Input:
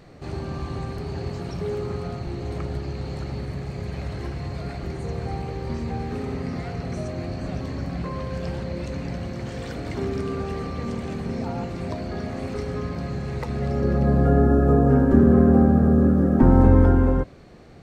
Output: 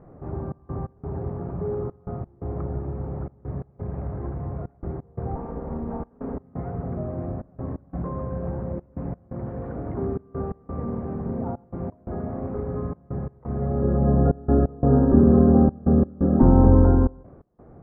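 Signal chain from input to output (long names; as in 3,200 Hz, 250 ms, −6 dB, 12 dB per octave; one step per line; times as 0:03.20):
0:05.35–0:06.37: lower of the sound and its delayed copy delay 4.3 ms
low-pass filter 1,200 Hz 24 dB per octave
gate pattern "xxx.x.xx" 87 BPM −24 dB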